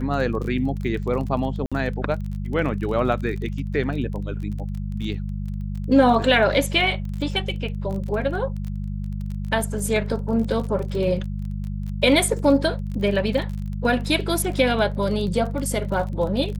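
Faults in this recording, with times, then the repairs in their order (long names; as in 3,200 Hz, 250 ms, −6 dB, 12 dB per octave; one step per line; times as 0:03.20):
surface crackle 27 per second −30 dBFS
mains hum 50 Hz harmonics 4 −28 dBFS
0:01.66–0:01.72: drop-out 56 ms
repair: click removal
hum removal 50 Hz, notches 4
repair the gap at 0:01.66, 56 ms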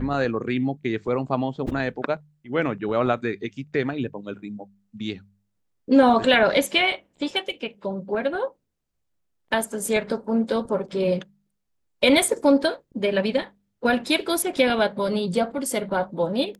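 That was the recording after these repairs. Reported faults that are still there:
none of them is left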